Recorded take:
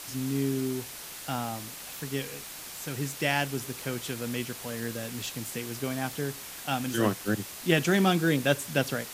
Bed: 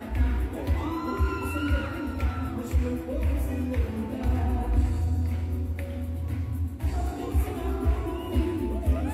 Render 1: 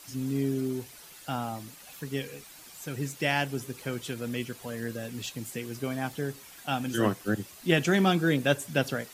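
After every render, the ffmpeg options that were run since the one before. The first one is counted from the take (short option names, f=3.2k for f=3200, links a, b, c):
-af "afftdn=nr=10:nf=-42"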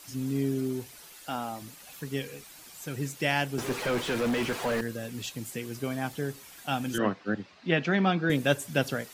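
-filter_complex "[0:a]asettb=1/sr,asplit=3[a][b][c];[a]atrim=end=1.084[d];[b]atrim=start=1.08:end=1.62,asetpts=PTS-STARTPTS,afade=t=in:d=0.004:c=qsin,afade=t=out:st=0.536:d=0.004:c=qsin,equalizer=f=130:w=1.6:g=-10.5[e];[c]atrim=start=1.616[f];[d][e]acrossfade=d=0.004:c1=hsin:c2=qsin[g];[g][f]acrossfade=d=0.004:c1=qsin:c2=hsin,asettb=1/sr,asplit=3[h][i][j];[h]atrim=end=3.584[k];[i]atrim=start=3.58:end=4.81,asetpts=PTS-STARTPTS,afade=t=in:d=0.004:c=qsin,afade=t=out:st=1.226:d=0.004:c=qsin,asplit=2[l][m];[m]highpass=f=720:p=1,volume=33dB,asoftclip=type=tanh:threshold=-18.5dB[n];[l][n]amix=inputs=2:normalize=0,lowpass=f=1.3k:p=1,volume=-6dB[o];[j]atrim=start=4.806[p];[k][o]acrossfade=d=0.004:c1=hsin:c2=qsin[q];[q][p]acrossfade=d=0.004:c1=qsin:c2=hsin,asettb=1/sr,asplit=3[r][s][t];[r]atrim=end=6.984[u];[s]atrim=start=6.98:end=8.3,asetpts=PTS-STARTPTS,afade=t=in:d=0.004:c=qsin,afade=t=out:st=1.316:d=0.004:c=qsin,highpass=110,equalizer=f=120:t=q:w=4:g=-9,equalizer=f=360:t=q:w=4:g=-5,equalizer=f=3.2k:t=q:w=4:g=-5,lowpass=f=4.2k:w=0.5412,lowpass=f=4.2k:w=1.3066[v];[t]atrim=start=8.296[w];[u][v]acrossfade=d=0.004:c1=hsin:c2=qsin[x];[x][w]acrossfade=d=0.004:c1=qsin:c2=hsin"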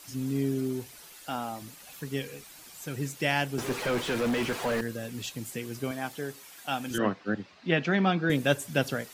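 -filter_complex "[0:a]asettb=1/sr,asplit=3[a][b][c];[a]atrim=end=5.914[d];[b]atrim=start=5.91:end=6.91,asetpts=PTS-STARTPTS,afade=t=in:d=0.004:c=qsin,afade=t=out:st=0.996:d=0.004:c=qsin,lowshelf=f=180:g=-12[e];[c]atrim=start=6.906[f];[d][e]acrossfade=d=0.004:c1=hsin:c2=qsin[g];[g][f]acrossfade=d=0.004:c1=qsin:c2=hsin"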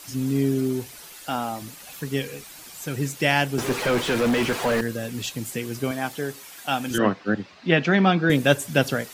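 -af "volume=6.5dB"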